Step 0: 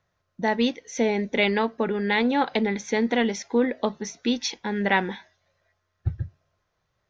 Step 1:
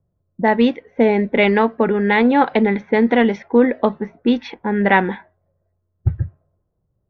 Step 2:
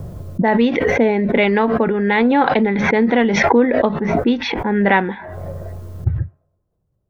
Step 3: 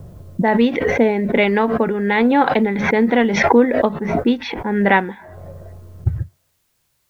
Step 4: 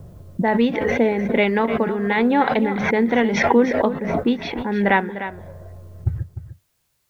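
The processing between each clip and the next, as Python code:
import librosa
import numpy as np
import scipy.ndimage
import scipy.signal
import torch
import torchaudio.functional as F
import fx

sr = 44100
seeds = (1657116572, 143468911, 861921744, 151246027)

y1 = fx.env_lowpass(x, sr, base_hz=330.0, full_db=-18.5)
y1 = scipy.signal.sosfilt(scipy.signal.butter(2, 2200.0, 'lowpass', fs=sr, output='sos'), y1)
y1 = F.gain(torch.from_numpy(y1), 8.5).numpy()
y2 = fx.pre_swell(y1, sr, db_per_s=24.0)
y2 = F.gain(torch.from_numpy(y2), -1.0).numpy()
y3 = fx.quant_dither(y2, sr, seeds[0], bits=10, dither='triangular')
y3 = fx.upward_expand(y3, sr, threshold_db=-27.0, expansion=1.5)
y3 = F.gain(torch.from_numpy(y3), 1.5).numpy()
y4 = y3 + 10.0 ** (-11.5 / 20.0) * np.pad(y3, (int(301 * sr / 1000.0), 0))[:len(y3)]
y4 = F.gain(torch.from_numpy(y4), -3.0).numpy()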